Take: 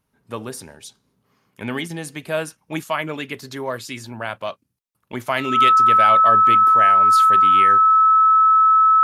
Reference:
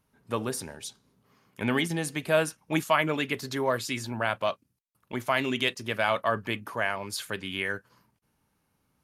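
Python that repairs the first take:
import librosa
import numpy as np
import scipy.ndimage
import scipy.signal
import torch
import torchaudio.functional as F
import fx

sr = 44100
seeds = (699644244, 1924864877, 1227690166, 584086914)

y = fx.notch(x, sr, hz=1300.0, q=30.0)
y = fx.fix_level(y, sr, at_s=5.11, step_db=-4.0)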